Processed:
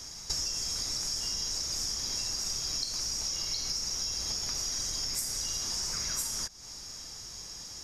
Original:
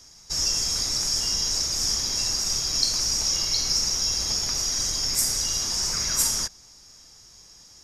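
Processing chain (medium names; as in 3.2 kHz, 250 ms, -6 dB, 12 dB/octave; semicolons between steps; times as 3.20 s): compression 12:1, threshold -37 dBFS, peak gain reduction 20.5 dB; trim +6.5 dB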